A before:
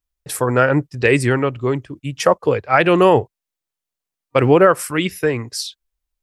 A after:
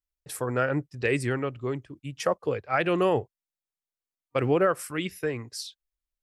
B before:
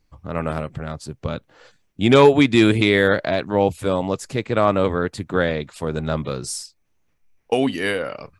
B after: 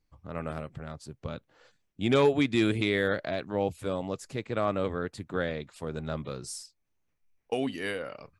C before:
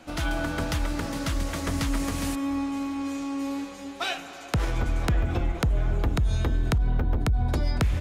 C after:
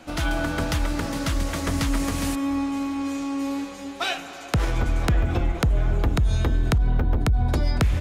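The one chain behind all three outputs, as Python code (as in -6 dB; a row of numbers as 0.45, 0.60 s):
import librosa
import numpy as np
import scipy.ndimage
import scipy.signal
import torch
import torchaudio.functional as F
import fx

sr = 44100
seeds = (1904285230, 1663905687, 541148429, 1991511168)

y = fx.dynamic_eq(x, sr, hz=940.0, q=6.6, threshold_db=-39.0, ratio=4.0, max_db=-5)
y = librosa.util.normalize(y) * 10.0 ** (-12 / 20.0)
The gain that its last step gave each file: -11.0, -10.5, +3.0 dB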